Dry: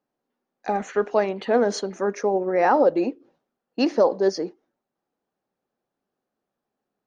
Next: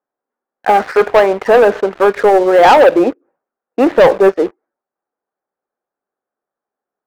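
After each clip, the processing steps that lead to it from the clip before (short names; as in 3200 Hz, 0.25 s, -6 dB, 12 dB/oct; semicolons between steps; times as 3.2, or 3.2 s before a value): EQ curve 200 Hz 0 dB, 430 Hz +10 dB, 1500 Hz +14 dB, 2400 Hz +5 dB, 4000 Hz -23 dB; sample leveller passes 3; gain -6 dB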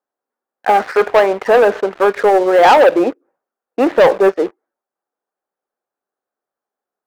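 low shelf 210 Hz -6.5 dB; gain -1 dB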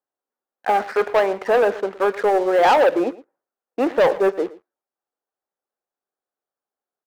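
echo 0.114 s -19 dB; gain -6.5 dB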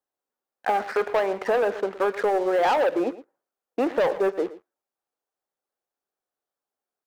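compressor 2.5:1, threshold -22 dBFS, peak gain reduction 7 dB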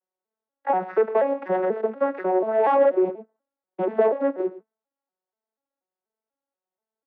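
arpeggiated vocoder minor triad, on F#3, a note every 0.242 s; BPF 270–2100 Hz; gain +3 dB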